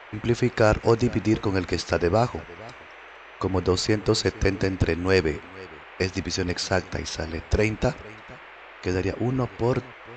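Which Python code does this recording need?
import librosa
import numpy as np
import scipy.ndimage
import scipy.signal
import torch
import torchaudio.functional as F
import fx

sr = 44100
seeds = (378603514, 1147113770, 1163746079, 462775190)

y = fx.noise_reduce(x, sr, print_start_s=2.83, print_end_s=3.33, reduce_db=24.0)
y = fx.fix_echo_inverse(y, sr, delay_ms=461, level_db=-22.0)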